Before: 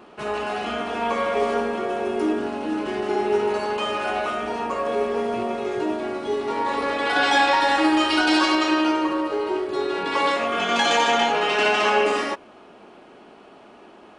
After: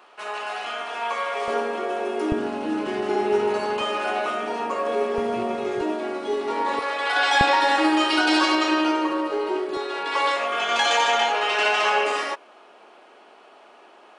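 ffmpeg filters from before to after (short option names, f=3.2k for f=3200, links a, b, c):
-af "asetnsamples=n=441:p=0,asendcmd='1.48 highpass f 340;2.32 highpass f 98;3.81 highpass f 230;5.18 highpass f 82;5.81 highpass f 240;6.79 highpass f 620;7.41 highpass f 250;9.77 highpass f 530',highpass=770"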